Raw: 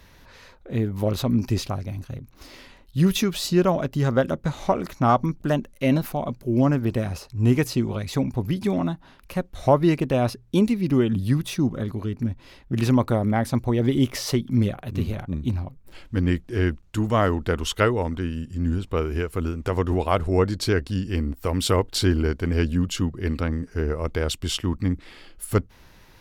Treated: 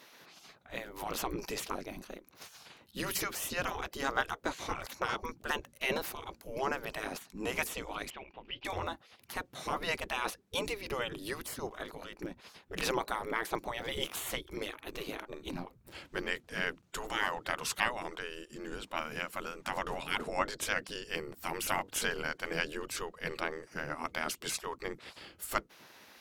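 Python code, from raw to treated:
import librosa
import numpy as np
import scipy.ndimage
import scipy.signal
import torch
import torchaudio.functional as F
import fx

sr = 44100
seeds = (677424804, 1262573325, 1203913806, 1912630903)

y = fx.spec_gate(x, sr, threshold_db=-15, keep='weak')
y = fx.ladder_lowpass(y, sr, hz=3100.0, resonance_pct=75, at=(8.1, 8.65))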